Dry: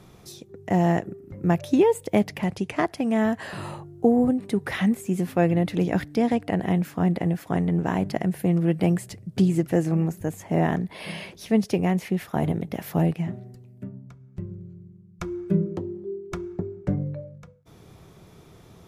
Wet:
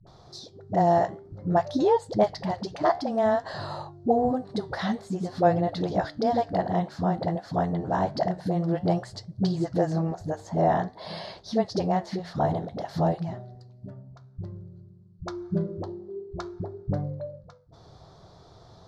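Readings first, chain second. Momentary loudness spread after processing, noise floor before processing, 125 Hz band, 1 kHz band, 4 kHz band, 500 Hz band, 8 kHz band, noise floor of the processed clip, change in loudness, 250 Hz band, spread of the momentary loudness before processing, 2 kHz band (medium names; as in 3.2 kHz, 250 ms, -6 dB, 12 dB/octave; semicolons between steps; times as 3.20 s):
17 LU, -51 dBFS, -4.5 dB, +4.5 dB, +0.5 dB, +0.5 dB, no reading, -53 dBFS, -2.5 dB, -6.0 dB, 16 LU, -5.5 dB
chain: phase dispersion highs, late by 69 ms, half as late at 360 Hz; flange 0.53 Hz, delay 6.5 ms, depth 8.1 ms, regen -79%; FFT filter 120 Hz 0 dB, 220 Hz -7 dB, 450 Hz -2 dB, 670 Hz +7 dB, 1.7 kHz -2 dB, 2.5 kHz -15 dB, 4.3 kHz +9 dB, 14 kHz -28 dB; trim +3.5 dB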